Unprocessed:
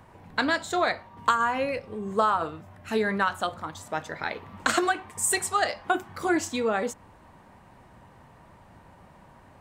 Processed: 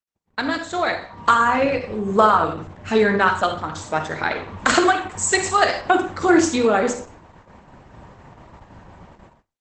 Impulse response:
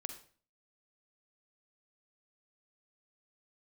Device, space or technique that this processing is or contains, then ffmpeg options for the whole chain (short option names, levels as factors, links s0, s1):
speakerphone in a meeting room: -filter_complex "[0:a]lowshelf=f=90:g=4.5[s0];[1:a]atrim=start_sample=2205[s1];[s0][s1]afir=irnorm=-1:irlink=0,dynaudnorm=f=710:g=3:m=2.82,agate=range=0.00224:threshold=0.00562:ratio=16:detection=peak,volume=1.41" -ar 48000 -c:a libopus -b:a 12k